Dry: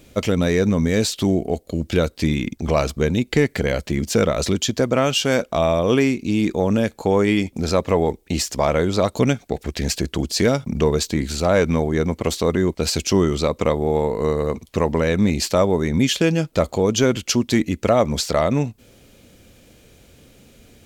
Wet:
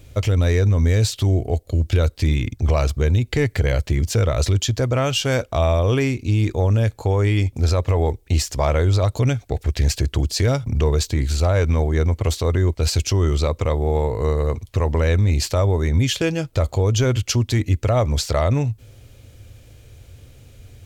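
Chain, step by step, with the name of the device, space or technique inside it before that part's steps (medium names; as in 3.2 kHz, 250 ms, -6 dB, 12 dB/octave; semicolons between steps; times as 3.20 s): car stereo with a boomy subwoofer (resonant low shelf 140 Hz +8.5 dB, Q 3; peak limiter -8 dBFS, peak gain reduction 5 dB); trim -1.5 dB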